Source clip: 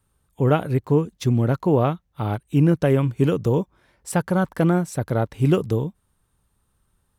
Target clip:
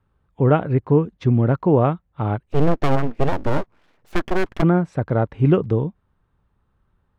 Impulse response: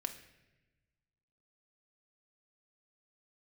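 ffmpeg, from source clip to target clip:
-filter_complex "[0:a]lowpass=2100,asplit=3[s0][s1][s2];[s0]afade=t=out:st=2.45:d=0.02[s3];[s1]aeval=exprs='abs(val(0))':c=same,afade=t=in:st=2.45:d=0.02,afade=t=out:st=4.61:d=0.02[s4];[s2]afade=t=in:st=4.61:d=0.02[s5];[s3][s4][s5]amix=inputs=3:normalize=0,volume=1.33"

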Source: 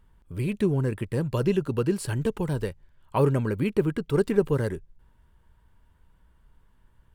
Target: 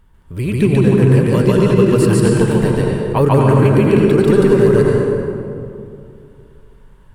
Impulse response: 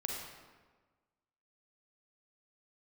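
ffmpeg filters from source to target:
-filter_complex "[0:a]asplit=2[s0][s1];[1:a]atrim=start_sample=2205,asetrate=22932,aresample=44100,adelay=145[s2];[s1][s2]afir=irnorm=-1:irlink=0,volume=0.891[s3];[s0][s3]amix=inputs=2:normalize=0,alimiter=level_in=2.66:limit=0.891:release=50:level=0:latency=1,volume=0.891"

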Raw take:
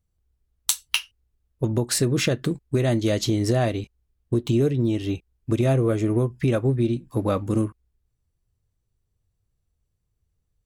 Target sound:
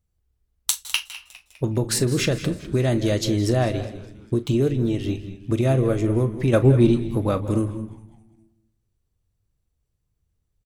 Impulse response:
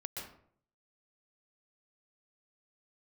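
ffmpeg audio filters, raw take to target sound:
-filter_complex "[0:a]asettb=1/sr,asplit=3[s0][s1][s2];[s0]atrim=end=6.534[s3];[s1]atrim=start=6.53:end=7.02,asetpts=PTS-STARTPTS,afade=t=in:d=0.004:c=qsin,afade=t=out:st=0.486:d=0.004:c=qsin,acontrast=65[s4];[s2]atrim=start=7.016[s5];[s3][s4]acrossfade=d=0.004:c1=hsin:c2=qsin[s6];[s6][s5]acrossfade=d=0.004:c1=qsin:c2=hsin,asplit=5[s7][s8][s9][s10][s11];[s8]adelay=203,afreqshift=-110,volume=0.141[s12];[s9]adelay=406,afreqshift=-220,volume=0.0708[s13];[s10]adelay=609,afreqshift=-330,volume=0.0355[s14];[s11]adelay=812,afreqshift=-440,volume=0.0176[s15];[s7][s12][s13][s14][s15]amix=inputs=5:normalize=0,asplit=2[s16][s17];[1:a]atrim=start_sample=2205,adelay=39[s18];[s17][s18]afir=irnorm=-1:irlink=0,volume=0.299[s19];[s16][s19]amix=inputs=2:normalize=0"

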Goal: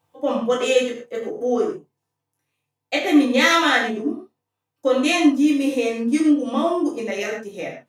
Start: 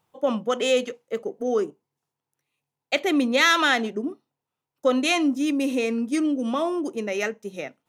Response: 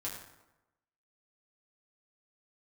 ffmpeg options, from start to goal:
-filter_complex "[0:a]bandreject=f=1400:w=13[s0];[1:a]atrim=start_sample=2205,atrim=end_sample=6615[s1];[s0][s1]afir=irnorm=-1:irlink=0,volume=1.41"

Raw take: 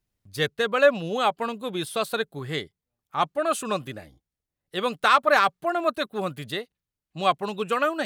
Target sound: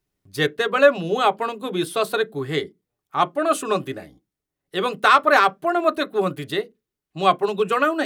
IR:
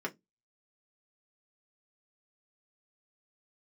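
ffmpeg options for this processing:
-filter_complex "[0:a]asplit=2[s0][s1];[s1]equalizer=f=150:t=o:w=0.21:g=-12.5[s2];[1:a]atrim=start_sample=2205,lowshelf=f=470:g=10[s3];[s2][s3]afir=irnorm=-1:irlink=0,volume=0.299[s4];[s0][s4]amix=inputs=2:normalize=0,volume=1.12"

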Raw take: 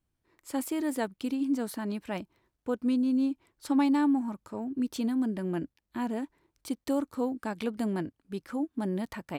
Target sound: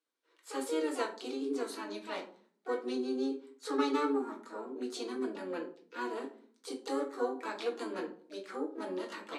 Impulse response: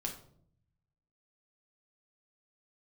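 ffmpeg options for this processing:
-filter_complex "[0:a]asplit=2[s0][s1];[s1]asetrate=66075,aresample=44100,atempo=0.66742,volume=0.501[s2];[s0][s2]amix=inputs=2:normalize=0,highpass=f=380:w=0.5412,highpass=f=380:w=1.3066,equalizer=f=700:t=q:w=4:g=-6,equalizer=f=1300:t=q:w=4:g=4,equalizer=f=4000:t=q:w=4:g=6,lowpass=f=10000:w=0.5412,lowpass=f=10000:w=1.3066[s3];[1:a]atrim=start_sample=2205,asetrate=61740,aresample=44100[s4];[s3][s4]afir=irnorm=-1:irlink=0"

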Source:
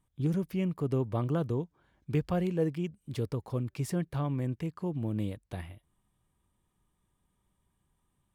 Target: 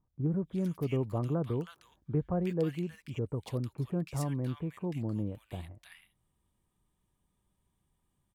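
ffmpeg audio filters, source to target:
-filter_complex "[0:a]acrossover=split=1400[s0][s1];[s1]adelay=320[s2];[s0][s2]amix=inputs=2:normalize=0,volume=0.841"

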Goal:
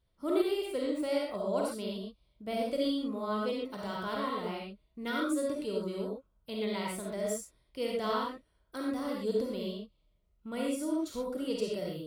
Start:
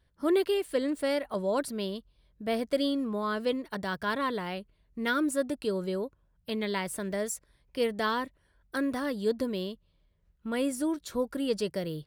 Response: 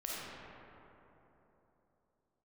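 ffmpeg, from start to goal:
-filter_complex "[0:a]equalizer=f=1700:t=o:w=0.21:g=-13.5[s0];[1:a]atrim=start_sample=2205,atrim=end_sample=6174[s1];[s0][s1]afir=irnorm=-1:irlink=0,volume=0.75"

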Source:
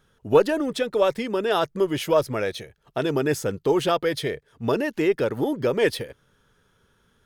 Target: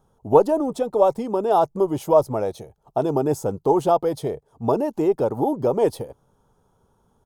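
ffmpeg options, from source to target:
-af "firequalizer=gain_entry='entry(520,0);entry(800,9);entry(1700,-19);entry(6900,-4)':delay=0.05:min_phase=1,volume=1.19"

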